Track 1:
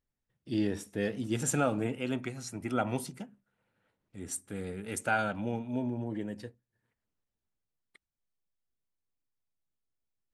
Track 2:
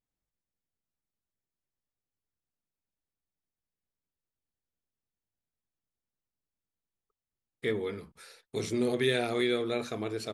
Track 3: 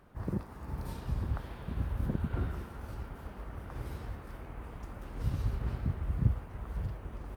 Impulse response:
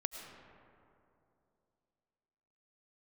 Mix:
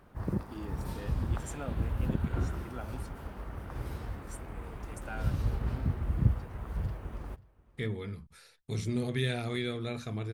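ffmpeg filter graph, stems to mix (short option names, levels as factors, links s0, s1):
-filter_complex "[0:a]volume=0.211[s0];[1:a]asubboost=boost=7:cutoff=140,adelay=150,volume=0.596[s1];[2:a]volume=1.26,asplit=2[s2][s3];[s3]volume=0.075,aecho=0:1:535:1[s4];[s0][s1][s2][s4]amix=inputs=4:normalize=0"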